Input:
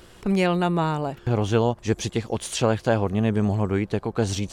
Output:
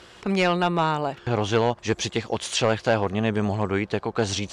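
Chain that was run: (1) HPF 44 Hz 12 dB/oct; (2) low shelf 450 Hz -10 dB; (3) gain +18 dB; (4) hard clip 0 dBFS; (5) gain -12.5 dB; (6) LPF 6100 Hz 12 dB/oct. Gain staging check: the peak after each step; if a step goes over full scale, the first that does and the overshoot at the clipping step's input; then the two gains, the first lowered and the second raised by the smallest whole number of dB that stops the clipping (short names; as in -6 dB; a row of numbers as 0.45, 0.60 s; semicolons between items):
-8.0, -11.0, +7.0, 0.0, -12.5, -12.0 dBFS; step 3, 7.0 dB; step 3 +11 dB, step 5 -5.5 dB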